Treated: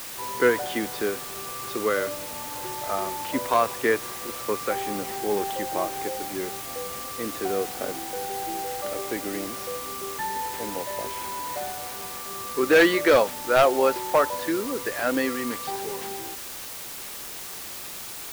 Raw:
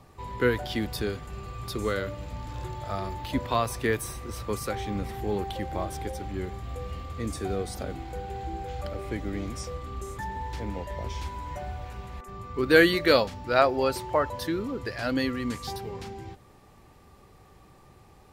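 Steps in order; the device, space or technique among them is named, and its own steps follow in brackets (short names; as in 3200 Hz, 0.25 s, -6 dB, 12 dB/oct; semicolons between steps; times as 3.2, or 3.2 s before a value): aircraft radio (BPF 330–2400 Hz; hard clip -18 dBFS, distortion -11 dB; white noise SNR 10 dB); gain +6 dB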